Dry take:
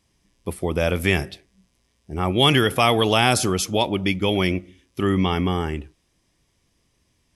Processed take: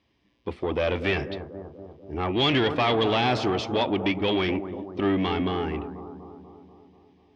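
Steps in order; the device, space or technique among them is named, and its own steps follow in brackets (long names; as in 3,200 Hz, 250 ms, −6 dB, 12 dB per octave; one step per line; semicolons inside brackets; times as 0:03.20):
analogue delay pedal into a guitar amplifier (bucket-brigade delay 243 ms, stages 2,048, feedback 61%, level −13 dB; tube saturation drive 18 dB, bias 0.25; loudspeaker in its box 80–4,000 Hz, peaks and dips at 100 Hz −4 dB, 170 Hz −9 dB, 290 Hz +3 dB, 1,400 Hz −3 dB)
level +1 dB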